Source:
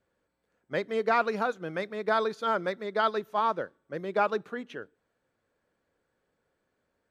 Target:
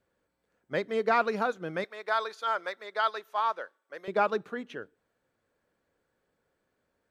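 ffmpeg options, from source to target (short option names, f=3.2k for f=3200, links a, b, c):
-filter_complex "[0:a]asettb=1/sr,asplit=3[a][b][c];[a]atrim=end=1.844[d];[b]atrim=start=1.84:end=4.08,asetpts=PTS-STARTPTS,afade=t=in:d=0.004:c=qsin,afade=t=out:st=2.236:d=0.004:c=qsin,highpass=740[e];[c]atrim=start=4.076[f];[d][e]acrossfade=d=0.004:c1=hsin:c2=qsin[g];[g][f]acrossfade=d=0.004:c1=qsin:c2=hsin"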